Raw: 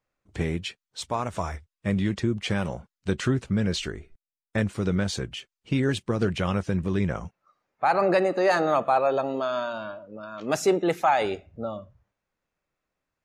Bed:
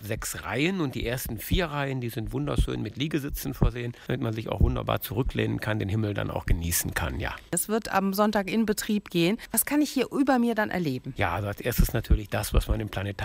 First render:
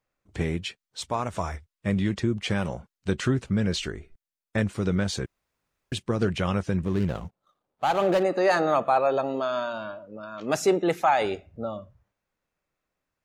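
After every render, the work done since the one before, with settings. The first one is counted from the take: 5.26–5.92 room tone; 6.85–8.23 median filter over 25 samples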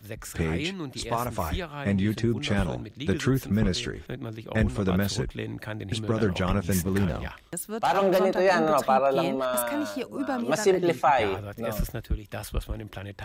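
add bed -7 dB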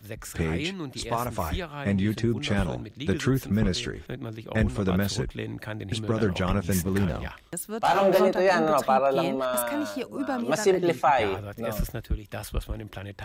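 7.81–8.28 doubler 19 ms -3 dB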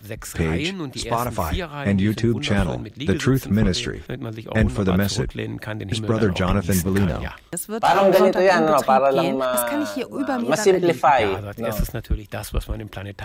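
gain +5.5 dB

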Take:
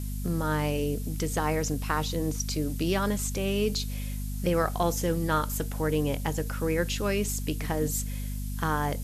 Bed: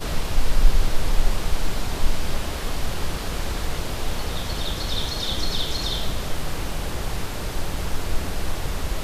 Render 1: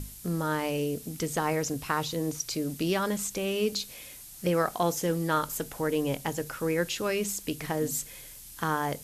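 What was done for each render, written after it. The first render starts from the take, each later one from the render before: notches 50/100/150/200/250 Hz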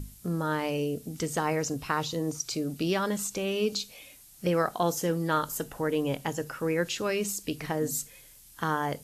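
noise print and reduce 7 dB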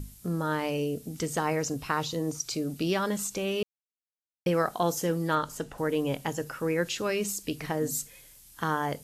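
3.63–4.46 mute; 5.35–5.78 air absorption 55 m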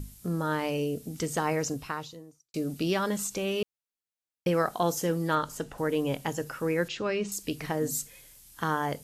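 1.7–2.54 fade out quadratic; 6.88–7.32 air absorption 130 m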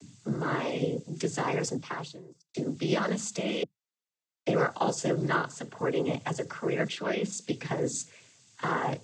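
noise vocoder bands 16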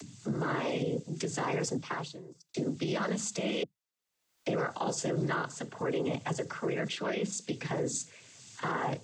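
upward compressor, threshold -42 dBFS; limiter -23 dBFS, peak gain reduction 9.5 dB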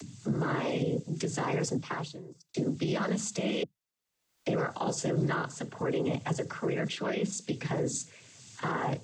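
low shelf 220 Hz +5.5 dB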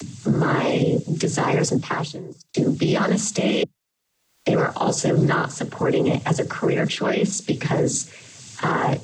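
gain +10.5 dB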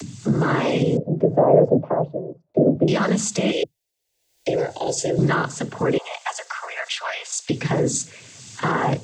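0.97–2.88 synth low-pass 610 Hz, resonance Q 7.4; 3.52–5.19 fixed phaser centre 500 Hz, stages 4; 5.98–7.5 steep high-pass 710 Hz

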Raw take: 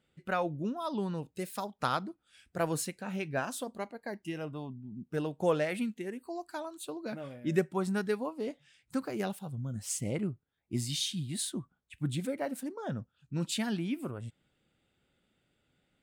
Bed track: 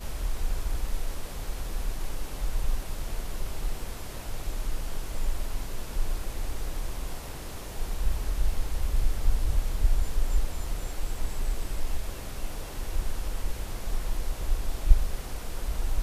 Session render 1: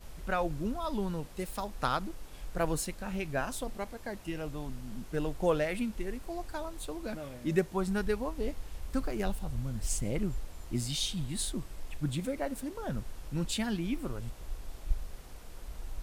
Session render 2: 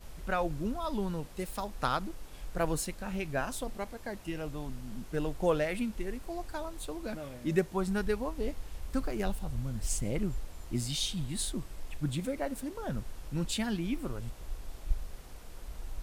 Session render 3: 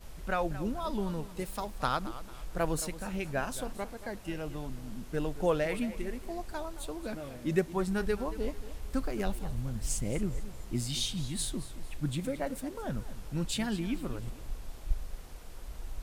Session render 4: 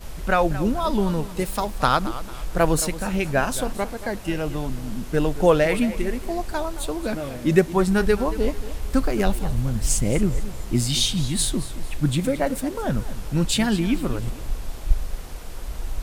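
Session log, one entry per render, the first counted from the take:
add bed track -12.5 dB
nothing audible
warbling echo 0.223 s, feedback 36%, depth 112 cents, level -15 dB
gain +11.5 dB; limiter -3 dBFS, peak gain reduction 1 dB

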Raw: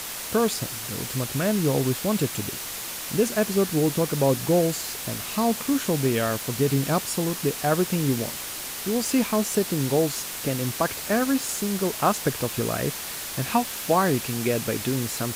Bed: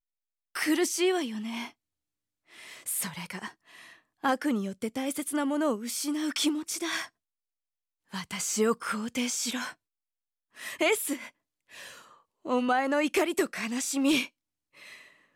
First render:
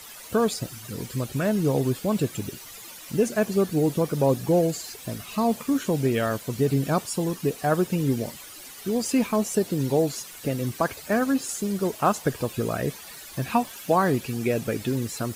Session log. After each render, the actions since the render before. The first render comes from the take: denoiser 13 dB, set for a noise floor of -34 dBFS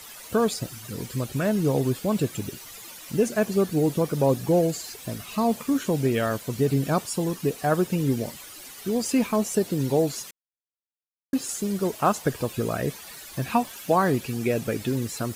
10.31–11.33 mute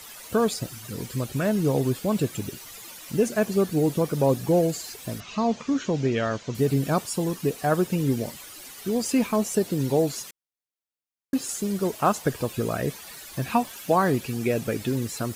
5.2–6.55 elliptic low-pass 6600 Hz, stop band 70 dB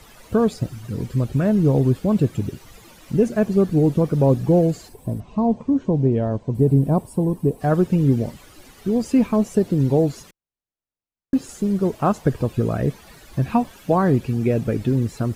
tilt -3 dB/oct; 4.88–7.61 spectral gain 1100–7600 Hz -12 dB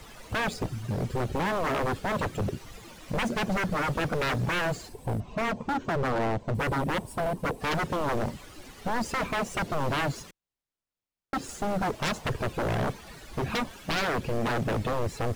median filter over 3 samples; wavefolder -22.5 dBFS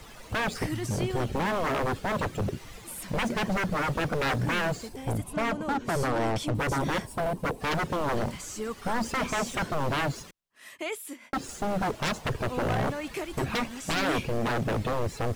add bed -9 dB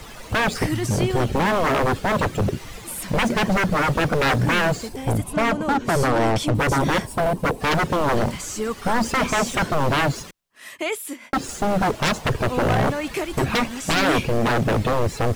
gain +8 dB

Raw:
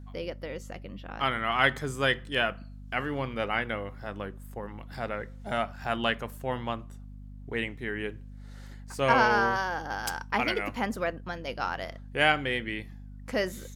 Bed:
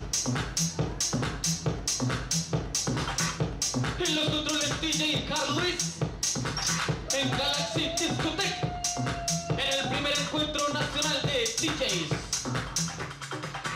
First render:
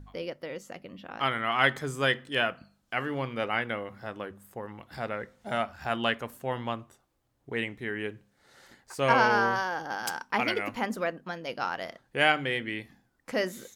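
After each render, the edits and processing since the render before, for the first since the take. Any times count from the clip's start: de-hum 50 Hz, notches 5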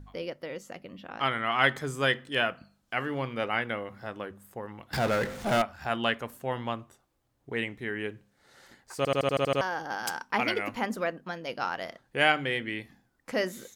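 1.07–1.65 LPF 12000 Hz; 4.93–5.62 power-law curve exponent 0.5; 8.97 stutter in place 0.08 s, 8 plays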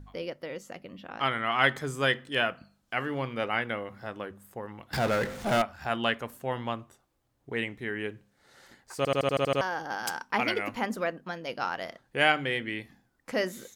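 nothing audible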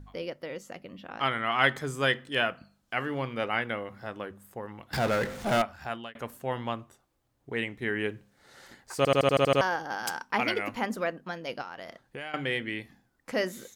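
5.73–6.15 fade out; 7.82–9.76 gain +3.5 dB; 11.61–12.34 compressor, threshold -36 dBFS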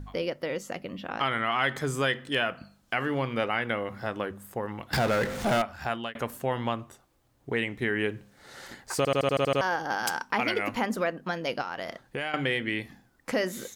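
in parallel at +2 dB: limiter -19 dBFS, peak gain reduction 11.5 dB; on the sum: compressor 2:1, threshold -27 dBFS, peak gain reduction 7.5 dB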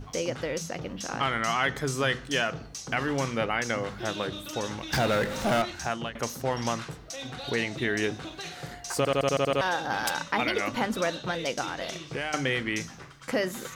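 add bed -10.5 dB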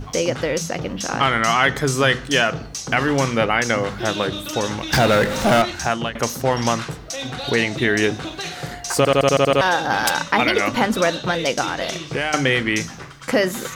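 gain +9.5 dB

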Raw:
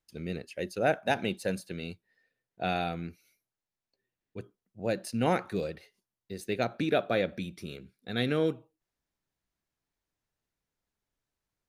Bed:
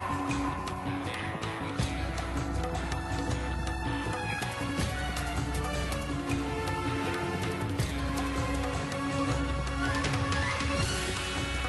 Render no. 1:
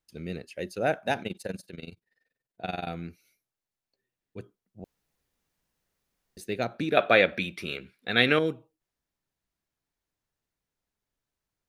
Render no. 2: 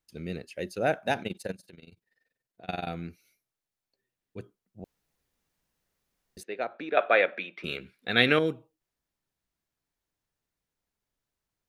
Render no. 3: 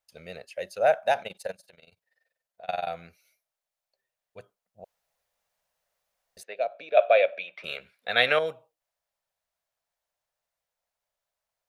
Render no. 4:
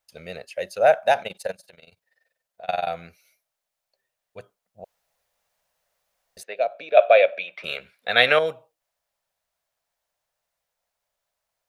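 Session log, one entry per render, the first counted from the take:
1.22–2.87 AM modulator 21 Hz, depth 80%; 4.84–6.37 room tone; 6.97–8.39 EQ curve 150 Hz 0 dB, 2500 Hz +15 dB, 6100 Hz +3 dB
1.53–2.69 compressor 3:1, threshold -49 dBFS; 6.43–7.64 BPF 470–2300 Hz
6.54–7.47 spectral gain 730–2200 Hz -10 dB; resonant low shelf 440 Hz -10.5 dB, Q 3
gain +5 dB

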